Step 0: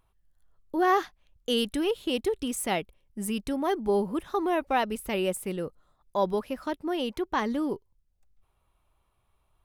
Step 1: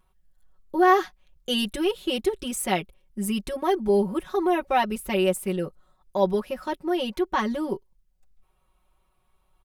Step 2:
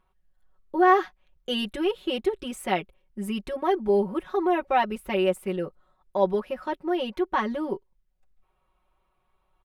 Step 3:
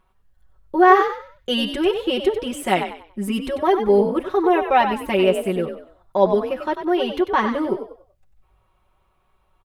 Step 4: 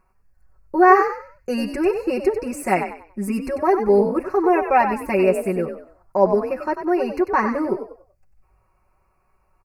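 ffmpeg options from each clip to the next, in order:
-af "aecho=1:1:5.4:0.99"
-af "bass=f=250:g=-5,treble=f=4k:g=-12"
-filter_complex "[0:a]asplit=5[a][b][c][d][e];[b]adelay=95,afreqshift=48,volume=-8.5dB[f];[c]adelay=190,afreqshift=96,volume=-19dB[g];[d]adelay=285,afreqshift=144,volume=-29.4dB[h];[e]adelay=380,afreqshift=192,volume=-39.9dB[i];[a][f][g][h][i]amix=inputs=5:normalize=0,volume=6dB"
-af "asuperstop=centerf=3400:order=12:qfactor=2.2"

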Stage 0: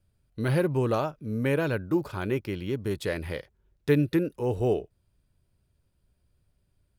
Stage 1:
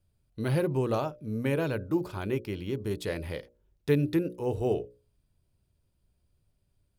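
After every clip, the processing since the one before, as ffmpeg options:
-af "equalizer=f=1.6k:w=1.5:g=-4,bandreject=f=60:t=h:w=6,bandreject=f=120:t=h:w=6,bandreject=f=180:t=h:w=6,bandreject=f=240:t=h:w=6,bandreject=f=300:t=h:w=6,bandreject=f=360:t=h:w=6,bandreject=f=420:t=h:w=6,bandreject=f=480:t=h:w=6,bandreject=f=540:t=h:w=6,bandreject=f=600:t=h:w=6,volume=-1.5dB"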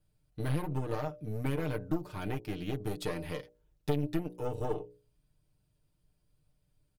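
-af "aeval=exprs='0.224*(cos(1*acos(clip(val(0)/0.224,-1,1)))-cos(1*PI/2))+0.0562*(cos(4*acos(clip(val(0)/0.224,-1,1)))-cos(4*PI/2))+0.00631*(cos(7*acos(clip(val(0)/0.224,-1,1)))-cos(7*PI/2))':c=same,acompressor=threshold=-31dB:ratio=5,aecho=1:1:6.6:0.69"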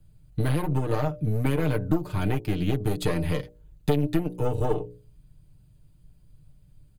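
-filter_complex "[0:a]bass=f=250:g=12,treble=f=4k:g=1,bandreject=f=5.5k:w=6.6,acrossover=split=300|1500[a][b][c];[a]acompressor=threshold=-31dB:ratio=6[d];[d][b][c]amix=inputs=3:normalize=0,volume=7.5dB"

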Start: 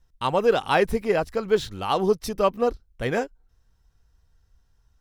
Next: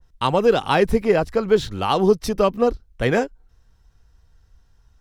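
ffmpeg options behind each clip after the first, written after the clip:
-filter_complex "[0:a]highshelf=f=9.4k:g=-6.5,acrossover=split=360|3000[a][b][c];[b]acompressor=threshold=-25dB:ratio=3[d];[a][d][c]amix=inputs=3:normalize=0,adynamicequalizer=threshold=0.00891:dfrequency=2000:dqfactor=0.7:tfrequency=2000:tqfactor=0.7:attack=5:release=100:ratio=0.375:range=1.5:mode=cutabove:tftype=highshelf,volume=7dB"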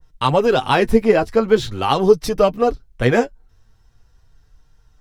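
-af "flanger=delay=6.5:depth=2.6:regen=32:speed=0.42:shape=sinusoidal,volume=6.5dB"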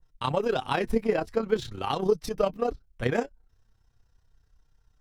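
-af "tremolo=f=32:d=0.621,volume=-8.5dB"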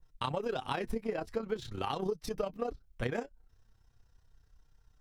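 -af "acompressor=threshold=-31dB:ratio=6"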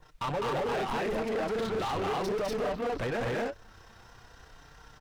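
-filter_complex "[0:a]aecho=1:1:204.1|244.9:0.631|1,volume=33dB,asoftclip=hard,volume=-33dB,asplit=2[a][b];[b]highpass=f=720:p=1,volume=25dB,asoftclip=type=tanh:threshold=-32.5dB[c];[a][c]amix=inputs=2:normalize=0,lowpass=f=2.1k:p=1,volume=-6dB,volume=5.5dB"

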